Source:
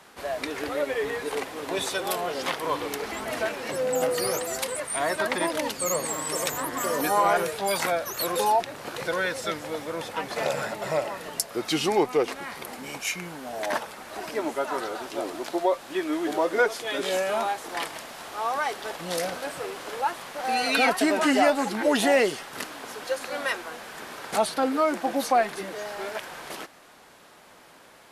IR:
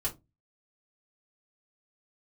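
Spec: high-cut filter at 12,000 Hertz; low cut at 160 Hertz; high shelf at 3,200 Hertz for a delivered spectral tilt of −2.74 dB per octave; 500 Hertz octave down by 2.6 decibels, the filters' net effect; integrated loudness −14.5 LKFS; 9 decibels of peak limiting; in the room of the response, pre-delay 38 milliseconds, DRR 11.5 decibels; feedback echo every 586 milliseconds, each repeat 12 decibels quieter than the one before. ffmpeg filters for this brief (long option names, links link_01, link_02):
-filter_complex "[0:a]highpass=160,lowpass=12000,equalizer=frequency=500:width_type=o:gain=-3,highshelf=frequency=3200:gain=-4,alimiter=limit=-19.5dB:level=0:latency=1,aecho=1:1:586|1172|1758:0.251|0.0628|0.0157,asplit=2[link_01][link_02];[1:a]atrim=start_sample=2205,adelay=38[link_03];[link_02][link_03]afir=irnorm=-1:irlink=0,volume=-15.5dB[link_04];[link_01][link_04]amix=inputs=2:normalize=0,volume=16dB"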